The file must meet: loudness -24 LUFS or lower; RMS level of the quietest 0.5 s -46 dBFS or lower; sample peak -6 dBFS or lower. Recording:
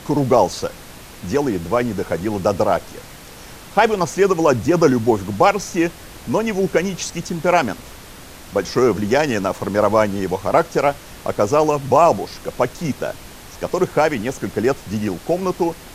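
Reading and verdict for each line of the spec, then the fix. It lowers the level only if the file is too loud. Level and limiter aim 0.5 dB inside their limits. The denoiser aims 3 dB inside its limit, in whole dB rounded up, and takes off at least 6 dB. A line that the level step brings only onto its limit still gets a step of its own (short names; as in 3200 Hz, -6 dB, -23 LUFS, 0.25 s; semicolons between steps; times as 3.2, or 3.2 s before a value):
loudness -19.0 LUFS: fail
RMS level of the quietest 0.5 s -39 dBFS: fail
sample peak -1.5 dBFS: fail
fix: denoiser 6 dB, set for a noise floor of -39 dBFS; gain -5.5 dB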